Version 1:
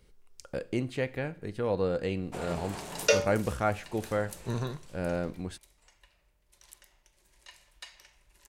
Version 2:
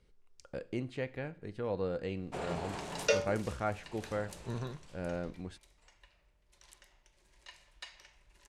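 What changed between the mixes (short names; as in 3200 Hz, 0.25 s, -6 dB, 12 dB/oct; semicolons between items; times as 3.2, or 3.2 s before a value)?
speech -6.0 dB; second sound -4.5 dB; master: add air absorption 54 m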